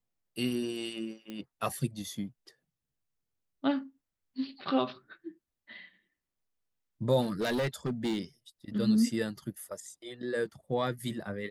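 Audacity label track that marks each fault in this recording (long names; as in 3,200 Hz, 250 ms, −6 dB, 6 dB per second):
1.300000	1.300000	click −27 dBFS
7.210000	8.190000	clipping −26.5 dBFS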